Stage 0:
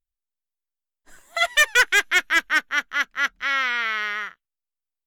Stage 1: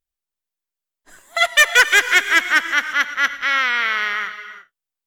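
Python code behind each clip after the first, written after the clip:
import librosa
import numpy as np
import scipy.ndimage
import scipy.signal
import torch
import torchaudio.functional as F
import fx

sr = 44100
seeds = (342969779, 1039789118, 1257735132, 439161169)

y = fx.low_shelf(x, sr, hz=88.0, db=-8.0)
y = fx.rev_gated(y, sr, seeds[0], gate_ms=370, shape='rising', drr_db=11.0)
y = F.gain(torch.from_numpy(y), 4.5).numpy()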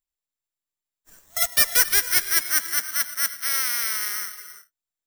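y = (np.kron(x[::6], np.eye(6)[0]) * 6)[:len(x)]
y = fx.low_shelf(y, sr, hz=120.0, db=6.5)
y = F.gain(torch.from_numpy(y), -13.5).numpy()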